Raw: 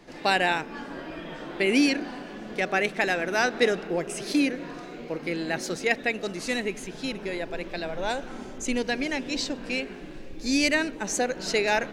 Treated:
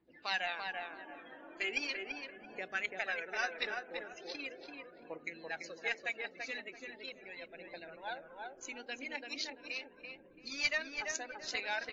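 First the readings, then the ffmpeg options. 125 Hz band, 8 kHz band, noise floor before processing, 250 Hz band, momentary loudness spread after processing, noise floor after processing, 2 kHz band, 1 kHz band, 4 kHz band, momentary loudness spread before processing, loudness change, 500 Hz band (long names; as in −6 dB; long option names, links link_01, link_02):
−25.0 dB, −13.5 dB, −41 dBFS, −24.5 dB, 14 LU, −59 dBFS, −9.5 dB, −13.5 dB, −10.0 dB, 15 LU, −12.5 dB, −17.5 dB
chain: -filter_complex "[0:a]aeval=exprs='0.376*(cos(1*acos(clip(val(0)/0.376,-1,1)))-cos(1*PI/2))+0.0473*(cos(2*acos(clip(val(0)/0.376,-1,1)))-cos(2*PI/2))':channel_layout=same,asplit=2[link_01][link_02];[link_02]acompressor=threshold=-30dB:ratio=16,volume=0.5dB[link_03];[link_01][link_03]amix=inputs=2:normalize=0,aeval=exprs='val(0)+0.00355*(sin(2*PI*60*n/s)+sin(2*PI*2*60*n/s)/2+sin(2*PI*3*60*n/s)/3+sin(2*PI*4*60*n/s)/4+sin(2*PI*5*60*n/s)/5)':channel_layout=same,aphaser=in_gain=1:out_gain=1:delay=4:decay=0.54:speed=0.39:type=triangular,afftdn=noise_reduction=18:noise_floor=-31,aderivative,bandreject=frequency=50:width_type=h:width=6,bandreject=frequency=100:width_type=h:width=6,bandreject=frequency=150:width_type=h:width=6,bandreject=frequency=200:width_type=h:width=6,bandreject=frequency=250:width_type=h:width=6,bandreject=frequency=300:width_type=h:width=6,bandreject=frequency=350:width_type=h:width=6,bandreject=frequency=400:width_type=h:width=6,bandreject=frequency=450:width_type=h:width=6,adynamicsmooth=sensitivity=1.5:basefreq=1700,asplit=2[link_04][link_05];[link_05]adelay=337,lowpass=frequency=1900:poles=1,volume=-3dB,asplit=2[link_06][link_07];[link_07]adelay=337,lowpass=frequency=1900:poles=1,volume=0.29,asplit=2[link_08][link_09];[link_09]adelay=337,lowpass=frequency=1900:poles=1,volume=0.29,asplit=2[link_10][link_11];[link_11]adelay=337,lowpass=frequency=1900:poles=1,volume=0.29[link_12];[link_06][link_08][link_10][link_12]amix=inputs=4:normalize=0[link_13];[link_04][link_13]amix=inputs=2:normalize=0" -ar 16000 -c:a wmav2 -b:a 32k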